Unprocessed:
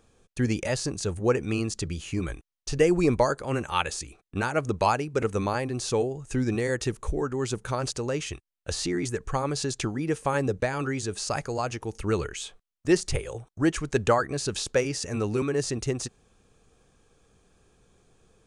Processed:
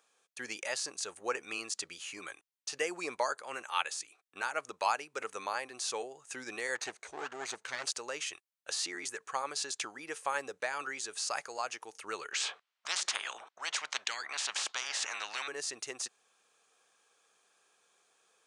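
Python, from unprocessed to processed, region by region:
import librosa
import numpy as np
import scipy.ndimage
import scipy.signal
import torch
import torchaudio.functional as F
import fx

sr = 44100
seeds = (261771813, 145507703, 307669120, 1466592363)

y = fx.chain(x, sr, fx.lower_of_two(delay_ms=0.48),
    fx.lowpass(hz=8100.0, slope=24), at=(6.75, 7.85))
y = fx.chain(y, sr, fx.lowpass(hz=3500.0, slope=12),
    fx.spectral_comp(ratio=10.0), at=(12.32, 15.48))
y = scipy.signal.sosfilt(scipy.signal.butter(2, 880.0, 'highpass', fs=sr, output='sos'), y)
y = fx.rider(y, sr, range_db=3, speed_s=2.0)
y = y * 10.0 ** (-4.0 / 20.0)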